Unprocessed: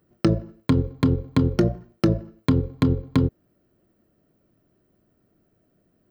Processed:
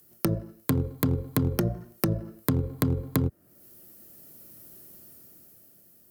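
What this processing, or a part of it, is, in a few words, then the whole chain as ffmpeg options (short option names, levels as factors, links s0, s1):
FM broadcast chain: -filter_complex "[0:a]highpass=60,dynaudnorm=f=200:g=13:m=4.47,acrossover=split=150|720|1900[s0][s1][s2][s3];[s0]acompressor=threshold=0.112:ratio=4[s4];[s1]acompressor=threshold=0.0891:ratio=4[s5];[s2]acompressor=threshold=0.0158:ratio=4[s6];[s3]acompressor=threshold=0.00112:ratio=4[s7];[s4][s5][s6][s7]amix=inputs=4:normalize=0,aemphasis=mode=production:type=75fm,alimiter=limit=0.251:level=0:latency=1:release=386,asoftclip=type=hard:threshold=0.168,lowpass=f=15000:w=0.5412,lowpass=f=15000:w=1.3066,aemphasis=mode=production:type=75fm"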